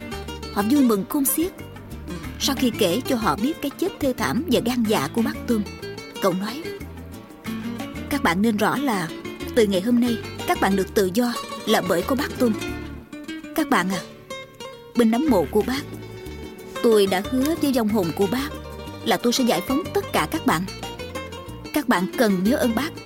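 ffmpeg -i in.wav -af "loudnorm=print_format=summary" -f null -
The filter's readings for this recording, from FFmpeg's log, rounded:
Input Integrated:    -22.4 LUFS
Input True Peak:      -6.5 dBTP
Input LRA:             2.9 LU
Input Threshold:     -33.1 LUFS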